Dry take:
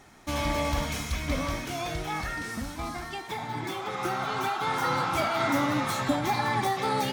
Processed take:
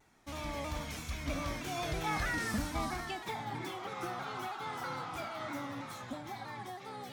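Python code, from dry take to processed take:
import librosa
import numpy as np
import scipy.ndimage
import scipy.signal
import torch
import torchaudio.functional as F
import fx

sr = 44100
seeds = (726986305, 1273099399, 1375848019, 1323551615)

y = fx.doppler_pass(x, sr, speed_mps=6, closest_m=3.4, pass_at_s=2.53)
y = fx.vibrato_shape(y, sr, shape='saw_down', rate_hz=3.1, depth_cents=100.0)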